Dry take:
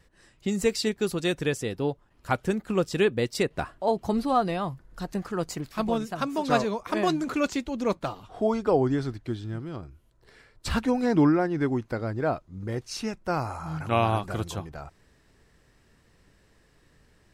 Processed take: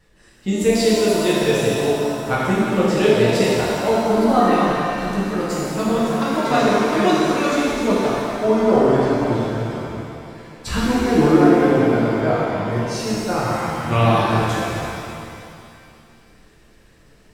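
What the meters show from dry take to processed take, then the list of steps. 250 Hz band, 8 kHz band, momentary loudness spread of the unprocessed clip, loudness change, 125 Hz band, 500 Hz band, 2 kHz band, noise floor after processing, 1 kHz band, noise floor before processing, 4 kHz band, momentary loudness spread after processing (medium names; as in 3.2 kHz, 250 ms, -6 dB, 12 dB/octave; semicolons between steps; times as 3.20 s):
+9.0 dB, +9.5 dB, 11 LU, +9.5 dB, +8.5 dB, +10.0 dB, +10.0 dB, -51 dBFS, +9.5 dB, -62 dBFS, +9.5 dB, 11 LU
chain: pitch-shifted reverb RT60 2.4 s, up +7 st, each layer -8 dB, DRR -7.5 dB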